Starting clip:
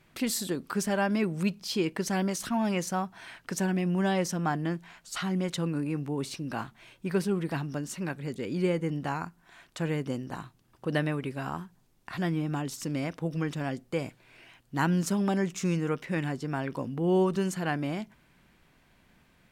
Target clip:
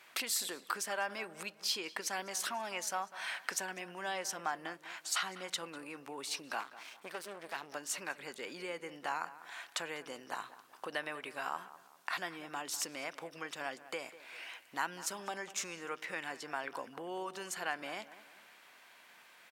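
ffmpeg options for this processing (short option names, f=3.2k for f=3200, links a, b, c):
-filter_complex "[0:a]asettb=1/sr,asplit=3[a][b][c];[a]atrim=end=6.604[d];[b]atrim=start=6.6:end=7.75,asetpts=PTS-STARTPTS,afade=t=in:d=0.004:c=qsin,afade=t=out:st=1.146:d=0.004:c=qsin,aeval=exprs='max(val(0),0)':c=same[e];[c]atrim=start=7.746[f];[d][e]acrossfade=d=0.004:c1=hsin:c2=qsin[g];[g][f]acrossfade=d=0.004:c1=qsin:c2=hsin,acompressor=threshold=-40dB:ratio=3,highpass=760,asplit=2[h][i];[i]adelay=198,lowpass=f=2.4k:p=1,volume=-15dB,asplit=2[j][k];[k]adelay=198,lowpass=f=2.4k:p=1,volume=0.41,asplit=2[l][m];[m]adelay=198,lowpass=f=2.4k:p=1,volume=0.41,asplit=2[n][o];[o]adelay=198,lowpass=f=2.4k:p=1,volume=0.41[p];[h][j][l][n][p]amix=inputs=5:normalize=0,volume=7.5dB"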